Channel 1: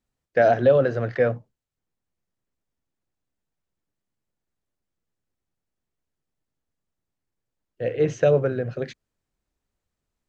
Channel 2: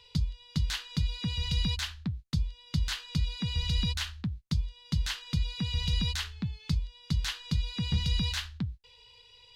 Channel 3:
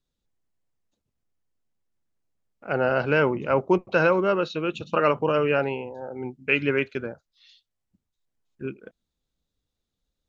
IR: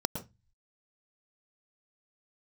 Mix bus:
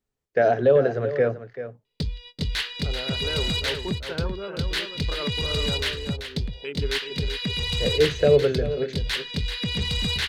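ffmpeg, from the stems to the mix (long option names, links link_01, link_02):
-filter_complex "[0:a]volume=-2.5dB,asplit=2[link_01][link_02];[link_02]volume=-12dB[link_03];[1:a]agate=range=-33dB:threshold=-47dB:ratio=16:detection=peak,equalizer=frequency=250:width_type=o:width=1:gain=6,equalizer=frequency=500:width_type=o:width=1:gain=9,equalizer=frequency=2000:width_type=o:width=1:gain=11,equalizer=frequency=4000:width_type=o:width=1:gain=7,equalizer=frequency=8000:width_type=o:width=1:gain=-5,asoftclip=type=tanh:threshold=-21.5dB,adelay=1850,volume=1.5dB,asplit=2[link_04][link_05];[link_05]volume=-9.5dB[link_06];[2:a]afwtdn=0.0447,adelay=150,volume=-14.5dB,asplit=2[link_07][link_08];[link_08]volume=-6dB[link_09];[link_03][link_06][link_09]amix=inputs=3:normalize=0,aecho=0:1:386:1[link_10];[link_01][link_04][link_07][link_10]amix=inputs=4:normalize=0,equalizer=frequency=420:width=7.9:gain=10.5"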